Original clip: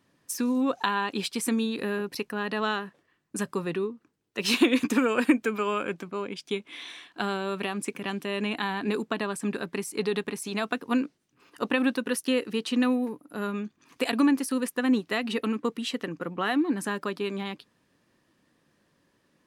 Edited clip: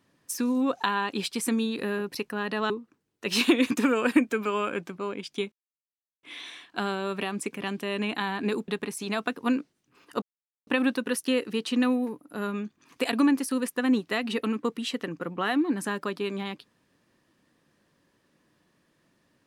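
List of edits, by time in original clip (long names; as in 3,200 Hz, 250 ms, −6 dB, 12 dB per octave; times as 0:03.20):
0:02.70–0:03.83: remove
0:06.65: splice in silence 0.71 s
0:09.10–0:10.13: remove
0:11.67: splice in silence 0.45 s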